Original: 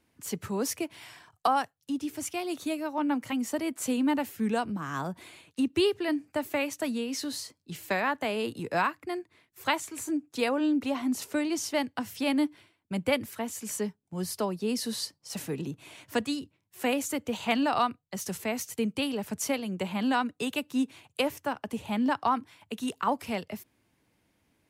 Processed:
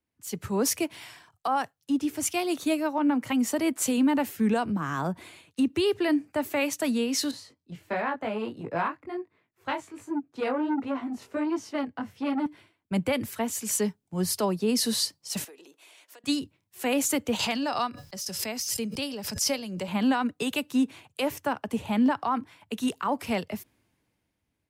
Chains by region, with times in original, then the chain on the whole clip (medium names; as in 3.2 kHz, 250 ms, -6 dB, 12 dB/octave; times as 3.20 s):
7.31–12.46 s: low-pass 1.7 kHz 6 dB/octave + chorus 1.4 Hz, delay 17.5 ms, depth 6.1 ms + transformer saturation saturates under 790 Hz
15.44–16.24 s: high-pass 390 Hz 24 dB/octave + compression 8:1, threshold -48 dBFS
17.39–19.88 s: peaking EQ 5.1 kHz +14 dB 0.32 oct + feedback comb 560 Hz, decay 0.2 s, harmonics odd + swell ahead of each attack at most 36 dB/s
whole clip: level rider gain up to 5.5 dB; peak limiter -17.5 dBFS; three bands expanded up and down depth 40%